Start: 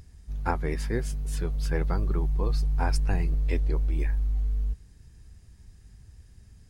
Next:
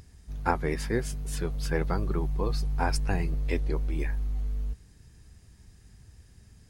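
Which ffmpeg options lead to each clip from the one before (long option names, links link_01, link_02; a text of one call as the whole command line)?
ffmpeg -i in.wav -af "lowshelf=frequency=79:gain=-9,volume=2.5dB" out.wav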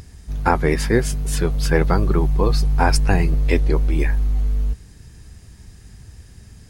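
ffmpeg -i in.wav -af "alimiter=level_in=12dB:limit=-1dB:release=50:level=0:latency=1,volume=-1dB" out.wav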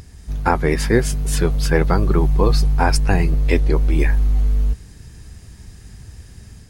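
ffmpeg -i in.wav -af "dynaudnorm=framelen=140:gausssize=3:maxgain=3dB" out.wav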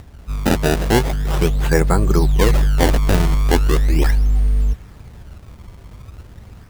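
ffmpeg -i in.wav -af "acrusher=samples=23:mix=1:aa=0.000001:lfo=1:lforange=36.8:lforate=0.39,volume=1dB" out.wav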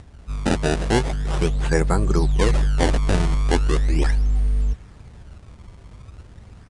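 ffmpeg -i in.wav -af "aresample=22050,aresample=44100,volume=-4dB" out.wav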